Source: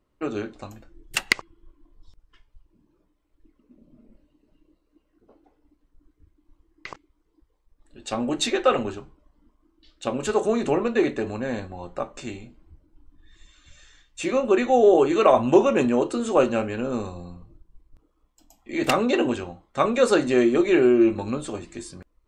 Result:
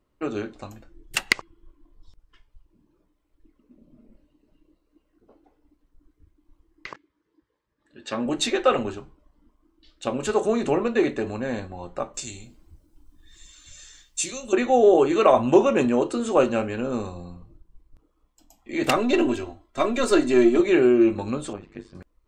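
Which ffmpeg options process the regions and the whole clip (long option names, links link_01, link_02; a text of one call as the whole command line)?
ffmpeg -i in.wav -filter_complex "[0:a]asettb=1/sr,asplit=3[link_01][link_02][link_03];[link_01]atrim=end=6.874[link_04];[link_02]atrim=start=6.87:end=8.26,asetpts=PTS-STARTPTS,afade=type=in:duration=0.004:curve=qsin,afade=type=out:start_time=1.386:duration=0.004:curve=qsin,highpass=130,lowpass=5600,equalizer=frequency=1700:width_type=o:width=0.25:gain=9,bandreject=frequency=740:width=5.2[link_05];[link_03]atrim=start=8.256[link_06];[link_04][link_05]acrossfade=duration=0.004:curve1=hsin:curve2=qsin[link_07];[link_07][link_06]acrossfade=duration=0.004:curve1=qsin:curve2=hsin,asettb=1/sr,asplit=3[link_08][link_09][link_10];[link_08]atrim=end=12.144[link_11];[link_09]atrim=start=12.14:end=14.53,asetpts=PTS-STARTPTS,afade=type=in:duration=0.004:curve=qsin,afade=type=out:start_time=2.386:duration=0.004:curve=qsin,acrossover=split=140|3000[link_12][link_13][link_14];[link_13]acompressor=threshold=-49dB:ratio=2:attack=3.2:release=140:knee=2.83:detection=peak[link_15];[link_12][link_15][link_14]amix=inputs=3:normalize=0,bass=frequency=250:gain=0,treble=frequency=4000:gain=14[link_16];[link_10]atrim=start=14.526[link_17];[link_11][link_16]acrossfade=duration=0.004:curve1=hsin:curve2=qsin[link_18];[link_18][link_17]acrossfade=duration=0.004:curve1=qsin:curve2=hsin,asettb=1/sr,asplit=3[link_19][link_20][link_21];[link_19]atrim=end=18.964[link_22];[link_20]atrim=start=18.96:end=20.6,asetpts=PTS-STARTPTS,afade=type=in:duration=0.004:curve=qsin,afade=type=out:start_time=1.636:duration=0.004:curve=qsin,aeval=exprs='if(lt(val(0),0),0.708*val(0),val(0))':channel_layout=same,equalizer=frequency=1100:width_type=o:width=2.1:gain=-2.5,aecho=1:1:3:0.81,atrim=end_sample=72324[link_23];[link_21]atrim=start=20.596[link_24];[link_22][link_23]acrossfade=duration=0.004:curve1=hsin:curve2=qsin[link_25];[link_25][link_24]acrossfade=duration=0.004:curve1=qsin:curve2=hsin,asettb=1/sr,asplit=3[link_26][link_27][link_28];[link_26]atrim=end=21.534[link_29];[link_27]atrim=start=21.53:end=21.95,asetpts=PTS-STARTPTS,afade=type=in:duration=0.004:curve=qsin,afade=type=out:start_time=0.416:duration=0.004:curve=qsin,lowpass=2700,tremolo=f=100:d=0.947[link_30];[link_28]atrim=start=21.946[link_31];[link_29][link_30]acrossfade=duration=0.004:curve1=hsin:curve2=qsin[link_32];[link_32][link_31]acrossfade=duration=0.004:curve1=qsin:curve2=hsin" out.wav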